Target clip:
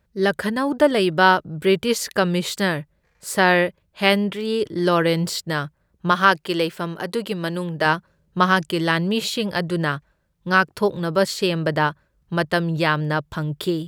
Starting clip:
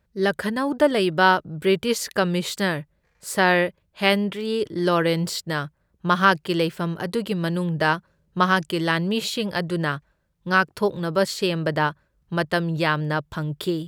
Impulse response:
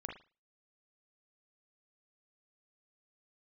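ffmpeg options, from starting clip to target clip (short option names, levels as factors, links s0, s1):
-filter_complex "[0:a]asettb=1/sr,asplit=3[s0][s1][s2];[s0]atrim=end=6.114[s3];[s1]atrim=start=6.11:end=7.86,asetpts=PTS-STARTPTS,afade=t=in:d=0.004:c=qsin,afade=t=out:st=1.746:d=0.004:c=qsin,equalizer=f=84:w=0.67:g=-11.5[s4];[s2]atrim=start=7.856[s5];[s3][s4]acrossfade=d=0.004:c1=hsin:c2=qsin[s6];[s6][s5]acrossfade=d=0.004:c1=qsin:c2=hsin,volume=1.26"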